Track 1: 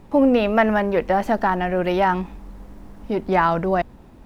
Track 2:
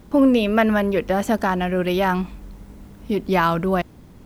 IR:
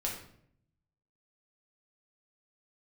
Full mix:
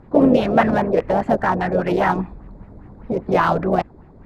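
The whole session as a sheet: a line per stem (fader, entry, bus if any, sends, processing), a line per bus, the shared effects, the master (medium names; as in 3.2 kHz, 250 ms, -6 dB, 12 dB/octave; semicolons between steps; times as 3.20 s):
-4.5 dB, 0.00 s, no send, whisper effect; LFO low-pass sine 5 Hz 530–2100 Hz
-2.0 dB, 0.00 s, polarity flipped, no send, local Wiener filter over 15 samples; low-pass 9.5 kHz 12 dB/octave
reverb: none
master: none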